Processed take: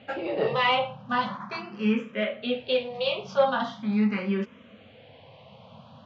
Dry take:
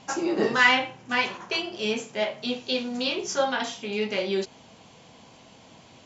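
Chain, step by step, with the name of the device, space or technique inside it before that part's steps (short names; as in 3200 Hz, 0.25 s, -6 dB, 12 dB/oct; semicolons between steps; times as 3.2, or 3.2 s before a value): barber-pole phaser into a guitar amplifier (endless phaser +0.41 Hz; soft clip -17 dBFS, distortion -20 dB; speaker cabinet 84–3600 Hz, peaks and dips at 95 Hz +9 dB, 140 Hz +6 dB, 210 Hz +10 dB, 350 Hz -10 dB, 540 Hz +7 dB, 1200 Hz +6 dB); gain +1.5 dB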